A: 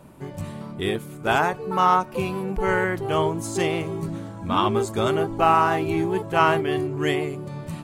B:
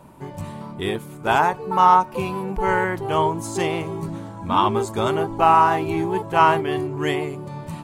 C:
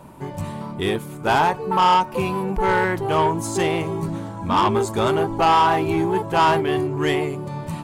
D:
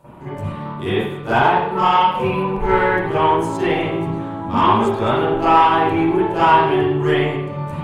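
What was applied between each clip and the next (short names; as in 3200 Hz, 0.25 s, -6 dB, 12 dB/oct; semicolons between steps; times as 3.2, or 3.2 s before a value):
bell 930 Hz +8 dB 0.36 oct
soft clip -15 dBFS, distortion -10 dB; gain +3.5 dB
reverb RT60 0.75 s, pre-delay 39 ms, DRR -13.5 dB; gain -10 dB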